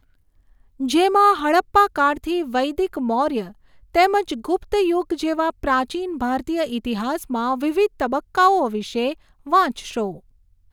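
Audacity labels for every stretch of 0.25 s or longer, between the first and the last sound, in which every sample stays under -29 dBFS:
3.480000	3.950000	silence
9.130000	9.470000	silence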